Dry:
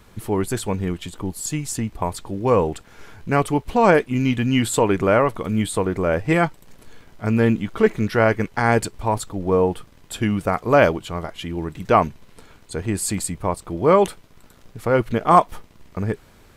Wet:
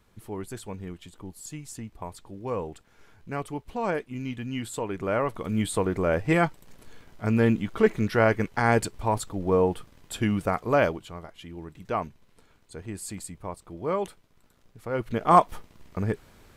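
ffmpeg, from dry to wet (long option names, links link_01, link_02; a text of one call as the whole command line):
ffmpeg -i in.wav -af "volume=5.5dB,afade=type=in:start_time=4.92:duration=0.79:silence=0.334965,afade=type=out:start_time=10.38:duration=0.83:silence=0.354813,afade=type=in:start_time=14.89:duration=0.48:silence=0.334965" out.wav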